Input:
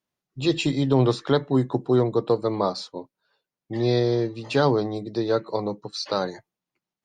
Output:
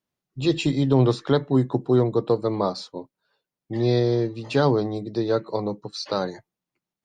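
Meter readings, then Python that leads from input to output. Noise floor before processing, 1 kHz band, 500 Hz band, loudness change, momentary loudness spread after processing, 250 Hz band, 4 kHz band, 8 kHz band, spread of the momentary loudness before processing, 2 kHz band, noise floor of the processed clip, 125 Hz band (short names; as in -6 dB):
under -85 dBFS, -1.0 dB, +0.5 dB, +0.5 dB, 11 LU, +1.0 dB, -1.5 dB, n/a, 10 LU, -1.5 dB, under -85 dBFS, +2.0 dB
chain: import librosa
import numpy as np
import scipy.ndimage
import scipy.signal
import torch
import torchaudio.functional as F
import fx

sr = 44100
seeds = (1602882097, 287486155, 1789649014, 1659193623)

y = fx.low_shelf(x, sr, hz=390.0, db=4.0)
y = y * librosa.db_to_amplitude(-1.5)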